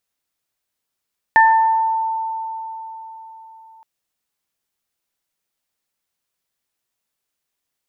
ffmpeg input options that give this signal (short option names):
-f lavfi -i "aevalsrc='0.376*pow(10,-3*t/4.21)*sin(2*PI*893*t)+0.335*pow(10,-3*t/0.73)*sin(2*PI*1786*t)':d=2.47:s=44100"